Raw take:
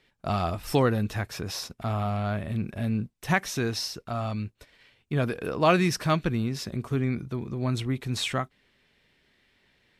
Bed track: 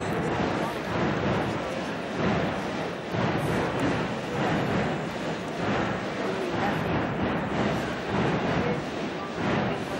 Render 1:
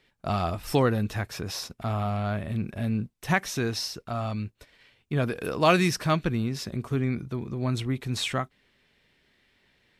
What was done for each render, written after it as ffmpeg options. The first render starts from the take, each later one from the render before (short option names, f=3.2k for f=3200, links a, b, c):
-filter_complex "[0:a]asettb=1/sr,asplit=3[a][b][c];[a]atrim=end=5.364[d];[b]atrim=start=5.36:end=5.91,asetpts=PTS-STARTPTS,afade=t=in:d=0.004:c=qsin,afade=t=out:st=0.546:d=0.004:c=qsin,highshelf=f=3.8k:g=8[e];[c]atrim=start=5.906[f];[d][e]acrossfade=d=0.004:c1=hsin:c2=qsin[g];[g][f]acrossfade=d=0.004:c1=qsin:c2=hsin"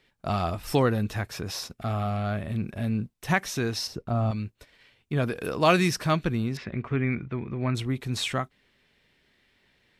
-filter_complex "[0:a]asettb=1/sr,asplit=3[a][b][c];[a]atrim=end=1.744[d];[b]atrim=start=1.74:end=2.4,asetpts=PTS-STARTPTS,afade=t=in:d=0.004:c=qsin,afade=t=out:st=0.656:d=0.004:c=qsin,asuperstop=centerf=960:order=4:qfactor=6.4[e];[c]atrim=start=2.396[f];[d][e]acrossfade=d=0.004:c1=hsin:c2=qsin[g];[g][f]acrossfade=d=0.004:c1=qsin:c2=hsin,asettb=1/sr,asplit=3[h][i][j];[h]atrim=end=3.874[k];[i]atrim=start=3.87:end=4.31,asetpts=PTS-STARTPTS,afade=t=in:d=0.004:c=qsin,afade=t=out:st=0.436:d=0.004:c=qsin,tiltshelf=f=970:g=7.5[l];[j]atrim=start=4.306[m];[k][l]acrossfade=d=0.004:c1=hsin:c2=qsin[n];[n][m]acrossfade=d=0.004:c1=qsin:c2=hsin,asettb=1/sr,asplit=3[o][p][q];[o]atrim=end=6.574[r];[p]atrim=start=6.57:end=7.75,asetpts=PTS-STARTPTS,afade=t=in:d=0.004:c=qsin,afade=t=out:st=1.176:d=0.004:c=qsin,lowpass=f=2.2k:t=q:w=2.5[s];[q]atrim=start=7.746[t];[r][s]acrossfade=d=0.004:c1=hsin:c2=qsin[u];[u][t]acrossfade=d=0.004:c1=qsin:c2=hsin"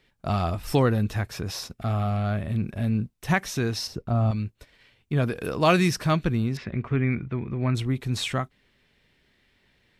-af "lowshelf=f=170:g=5.5"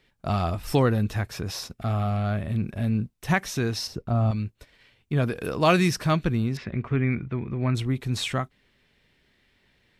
-af anull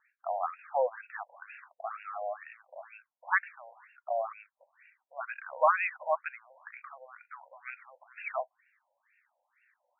-af "aphaser=in_gain=1:out_gain=1:delay=3.2:decay=0.2:speed=0.3:type=triangular,afftfilt=real='re*between(b*sr/1024,680*pow(2000/680,0.5+0.5*sin(2*PI*2.1*pts/sr))/1.41,680*pow(2000/680,0.5+0.5*sin(2*PI*2.1*pts/sr))*1.41)':imag='im*between(b*sr/1024,680*pow(2000/680,0.5+0.5*sin(2*PI*2.1*pts/sr))/1.41,680*pow(2000/680,0.5+0.5*sin(2*PI*2.1*pts/sr))*1.41)':win_size=1024:overlap=0.75"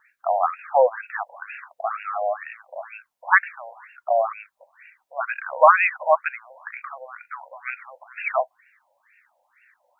-af "volume=11.5dB,alimiter=limit=-2dB:level=0:latency=1"